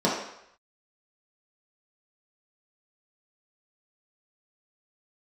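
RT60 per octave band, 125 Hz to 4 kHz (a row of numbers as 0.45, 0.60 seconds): 0.55, 0.55, 0.70, 0.75, 0.80, 0.70 seconds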